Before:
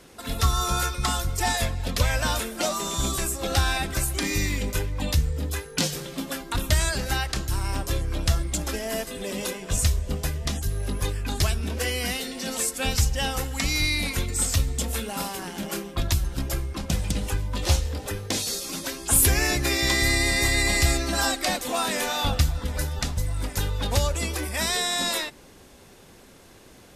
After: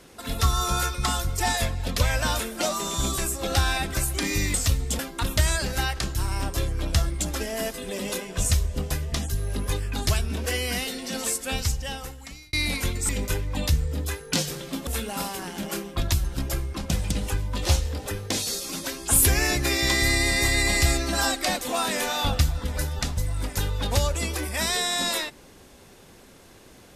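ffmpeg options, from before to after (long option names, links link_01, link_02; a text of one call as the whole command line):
ffmpeg -i in.wav -filter_complex "[0:a]asplit=6[link_01][link_02][link_03][link_04][link_05][link_06];[link_01]atrim=end=4.542[link_07];[link_02]atrim=start=14.418:end=14.872[link_08];[link_03]atrim=start=6.318:end=13.86,asetpts=PTS-STARTPTS,afade=type=out:start_time=6.232:duration=1.31[link_09];[link_04]atrim=start=13.86:end=14.422,asetpts=PTS-STARTPTS,afade=type=in:duration=0.004:curve=hsin[link_10];[link_05]atrim=start=4.538:end=6.322[link_11];[link_06]atrim=start=14.868[link_12];[link_07][link_08]acrossfade=duration=0.004:curve1=hsin:curve2=hsin[link_13];[link_09][link_10]concat=n=2:v=0:a=1[link_14];[link_13][link_14]acrossfade=duration=0.004:curve1=hsin:curve2=hsin[link_15];[link_15][link_11]acrossfade=duration=0.004:curve1=hsin:curve2=hsin[link_16];[link_16][link_12]acrossfade=duration=0.004:curve1=hsin:curve2=hsin" out.wav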